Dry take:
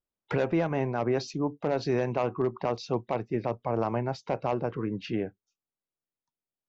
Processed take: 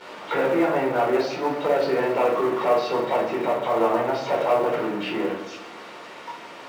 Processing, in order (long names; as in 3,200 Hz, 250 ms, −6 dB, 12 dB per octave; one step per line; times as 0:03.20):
converter with a step at zero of −30 dBFS
band-pass filter 460–2,600 Hz
echo machine with several playback heads 71 ms, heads first and second, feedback 68%, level −19 dB
rectangular room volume 480 cubic metres, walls furnished, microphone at 4.5 metres
in parallel at −11 dB: floating-point word with a short mantissa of 2 bits
on the sum: level −2 dB